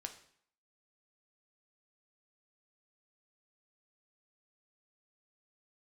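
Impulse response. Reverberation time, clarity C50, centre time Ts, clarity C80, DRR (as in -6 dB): 0.60 s, 11.5 dB, 11 ms, 14.5 dB, 5.0 dB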